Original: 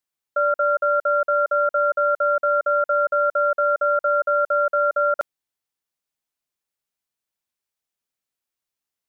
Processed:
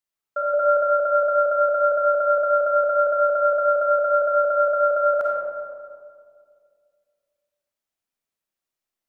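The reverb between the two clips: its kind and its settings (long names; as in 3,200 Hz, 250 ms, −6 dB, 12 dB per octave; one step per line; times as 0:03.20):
comb and all-pass reverb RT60 2.2 s, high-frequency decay 0.3×, pre-delay 10 ms, DRR −3.5 dB
level −4.5 dB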